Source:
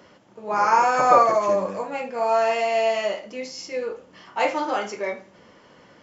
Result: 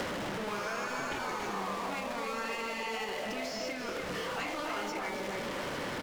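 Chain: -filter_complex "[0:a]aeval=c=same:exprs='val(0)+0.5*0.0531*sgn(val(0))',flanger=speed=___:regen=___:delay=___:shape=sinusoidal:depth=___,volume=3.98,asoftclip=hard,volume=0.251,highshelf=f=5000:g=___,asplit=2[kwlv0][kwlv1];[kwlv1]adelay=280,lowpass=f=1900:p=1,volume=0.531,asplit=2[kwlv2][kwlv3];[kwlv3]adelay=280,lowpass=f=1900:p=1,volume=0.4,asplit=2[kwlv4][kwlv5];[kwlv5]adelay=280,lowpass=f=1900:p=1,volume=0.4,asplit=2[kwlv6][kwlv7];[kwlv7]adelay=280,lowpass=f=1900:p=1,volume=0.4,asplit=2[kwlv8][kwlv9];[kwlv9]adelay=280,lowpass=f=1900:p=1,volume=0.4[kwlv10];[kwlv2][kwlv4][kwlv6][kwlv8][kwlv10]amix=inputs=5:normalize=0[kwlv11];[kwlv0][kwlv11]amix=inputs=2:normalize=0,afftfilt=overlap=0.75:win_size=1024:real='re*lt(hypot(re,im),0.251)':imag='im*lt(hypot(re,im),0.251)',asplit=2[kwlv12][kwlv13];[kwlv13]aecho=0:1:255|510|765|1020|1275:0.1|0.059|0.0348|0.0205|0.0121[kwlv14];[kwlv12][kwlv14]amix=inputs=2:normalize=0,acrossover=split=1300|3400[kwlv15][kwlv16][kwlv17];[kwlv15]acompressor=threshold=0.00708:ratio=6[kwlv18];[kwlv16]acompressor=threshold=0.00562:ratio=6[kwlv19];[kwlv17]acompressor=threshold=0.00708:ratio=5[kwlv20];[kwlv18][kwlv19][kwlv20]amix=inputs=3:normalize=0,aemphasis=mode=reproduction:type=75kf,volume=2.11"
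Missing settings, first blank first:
0.88, -89, 2.4, 8.8, 4.5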